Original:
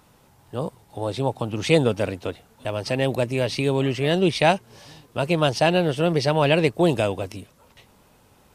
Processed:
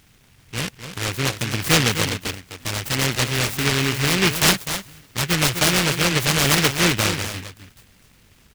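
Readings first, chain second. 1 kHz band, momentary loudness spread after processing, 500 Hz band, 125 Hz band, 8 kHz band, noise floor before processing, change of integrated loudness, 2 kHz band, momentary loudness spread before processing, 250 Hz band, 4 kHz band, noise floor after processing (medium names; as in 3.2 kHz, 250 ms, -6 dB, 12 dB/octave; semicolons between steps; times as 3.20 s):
0.0 dB, 13 LU, -6.0 dB, +2.0 dB, +17.5 dB, -57 dBFS, +2.5 dB, +7.5 dB, 14 LU, -0.5 dB, +9.0 dB, -55 dBFS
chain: bass shelf 87 Hz +8 dB; delay 254 ms -9.5 dB; delay time shaken by noise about 2.2 kHz, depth 0.45 ms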